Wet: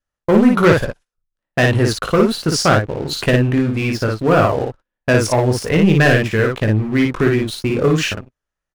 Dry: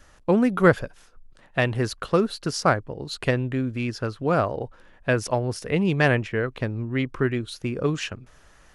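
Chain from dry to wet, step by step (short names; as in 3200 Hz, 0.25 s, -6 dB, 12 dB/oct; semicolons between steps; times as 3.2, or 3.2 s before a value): gate -40 dBFS, range -24 dB; sample leveller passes 3; on a send: early reflections 19 ms -8 dB, 56 ms -3 dB; on the sum: gain -2.5 dB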